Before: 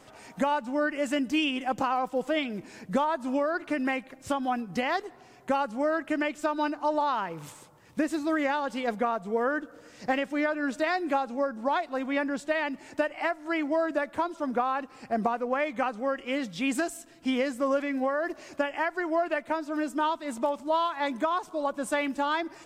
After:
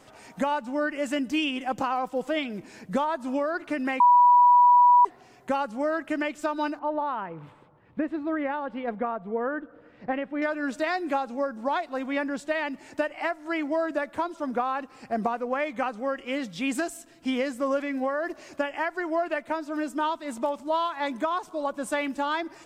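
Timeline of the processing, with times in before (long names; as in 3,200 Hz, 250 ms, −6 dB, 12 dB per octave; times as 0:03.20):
0:04.00–0:05.05: beep over 977 Hz −13 dBFS
0:06.79–0:10.42: high-frequency loss of the air 500 metres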